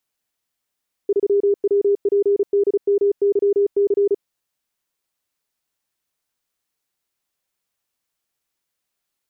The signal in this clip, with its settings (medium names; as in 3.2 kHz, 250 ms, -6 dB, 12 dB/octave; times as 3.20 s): Morse "3WPDMYC" 35 wpm 403 Hz -13 dBFS